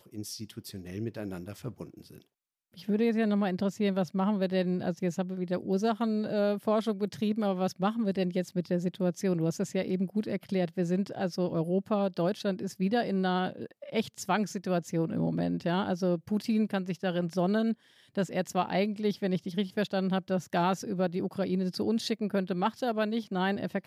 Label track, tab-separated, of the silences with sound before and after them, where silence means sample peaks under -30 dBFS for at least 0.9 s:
1.820000	2.890000	silence